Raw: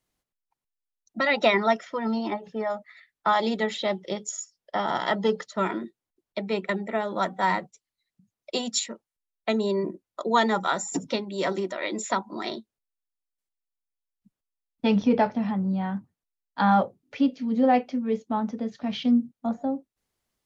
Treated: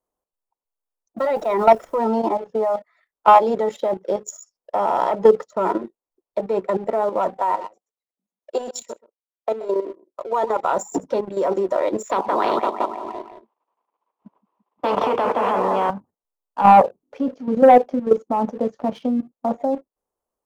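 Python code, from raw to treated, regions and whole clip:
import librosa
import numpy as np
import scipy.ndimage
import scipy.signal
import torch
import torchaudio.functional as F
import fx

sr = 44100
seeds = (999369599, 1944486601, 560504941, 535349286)

y = fx.auto_swell(x, sr, attack_ms=120.0, at=(1.18, 1.98), fade=0.02)
y = fx.dmg_noise_colour(y, sr, seeds[0], colour='pink', level_db=-53.0, at=(1.18, 1.98), fade=0.02)
y = fx.chain(y, sr, fx.highpass(hz=270.0, slope=24),
    fx.level_steps(step_db=13),
    fx.echo_single(ms=128, db=-16.5), at=(7.37, 10.64))
y = fx.chain(y, sr, fx.cabinet(low_hz=250.0, low_slope=12, high_hz=3000.0, hz=(540.0, 1000.0, 1500.0), db=(-5, 9, -6)),
    fx.echo_feedback(ms=171, feedback_pct=53, wet_db=-17),
    fx.spectral_comp(ratio=4.0), at=(12.11, 15.9))
y = fx.graphic_eq(y, sr, hz=(125, 500, 1000, 2000, 4000), db=(-8, 10, 9, -9, -11))
y = fx.leveller(y, sr, passes=1)
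y = fx.level_steps(y, sr, step_db=11)
y = y * 10.0 ** (2.5 / 20.0)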